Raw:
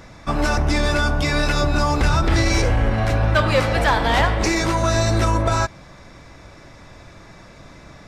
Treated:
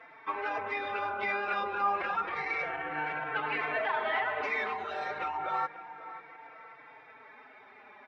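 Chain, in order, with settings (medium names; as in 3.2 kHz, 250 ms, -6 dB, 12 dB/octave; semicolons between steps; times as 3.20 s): Chebyshev low-pass 2.4 kHz, order 3; formant-preserving pitch shift +5.5 st; peak limiter -15 dBFS, peak gain reduction 11 dB; high-pass 690 Hz 12 dB/octave; on a send: tape echo 541 ms, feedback 49%, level -14.5 dB, low-pass 1.9 kHz; on the sum: endless flanger 4 ms -0.3 Hz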